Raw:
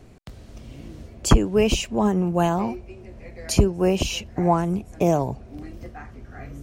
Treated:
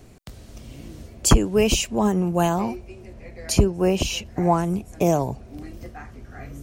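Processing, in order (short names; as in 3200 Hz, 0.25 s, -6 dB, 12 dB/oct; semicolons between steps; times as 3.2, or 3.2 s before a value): high shelf 5600 Hz +9.5 dB, from 3.13 s +2.5 dB, from 4.25 s +8 dB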